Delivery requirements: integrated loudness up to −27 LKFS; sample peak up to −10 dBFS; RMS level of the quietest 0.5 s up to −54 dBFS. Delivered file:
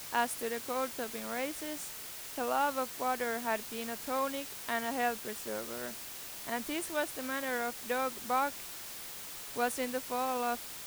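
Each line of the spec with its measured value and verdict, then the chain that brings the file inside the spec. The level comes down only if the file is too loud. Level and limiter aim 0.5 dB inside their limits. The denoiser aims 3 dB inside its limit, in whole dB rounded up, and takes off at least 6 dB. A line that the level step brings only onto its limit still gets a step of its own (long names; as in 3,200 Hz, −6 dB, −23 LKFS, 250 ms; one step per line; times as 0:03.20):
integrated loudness −35.0 LKFS: in spec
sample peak −17.0 dBFS: in spec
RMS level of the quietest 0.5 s −44 dBFS: out of spec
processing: broadband denoise 13 dB, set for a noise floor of −44 dBFS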